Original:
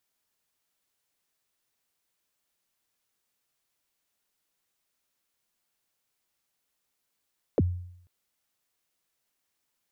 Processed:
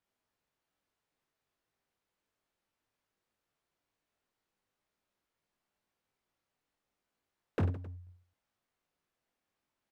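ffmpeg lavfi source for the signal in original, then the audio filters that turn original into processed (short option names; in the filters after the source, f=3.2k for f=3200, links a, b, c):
-f lavfi -i "aevalsrc='0.141*pow(10,-3*t/0.7)*sin(2*PI*(600*0.034/log(89/600)*(exp(log(89/600)*min(t,0.034)/0.034)-1)+89*max(t-0.034,0)))':d=0.49:s=44100"
-af "lowpass=f=1.3k:p=1,asoftclip=type=hard:threshold=-28.5dB,aecho=1:1:20|50|95|162.5|263.8:0.631|0.398|0.251|0.158|0.1"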